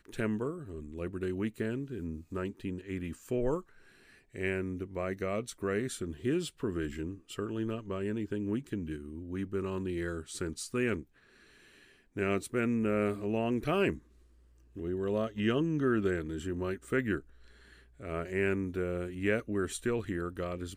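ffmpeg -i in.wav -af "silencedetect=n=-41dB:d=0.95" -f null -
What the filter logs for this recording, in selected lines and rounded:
silence_start: 11.03
silence_end: 12.16 | silence_duration: 1.14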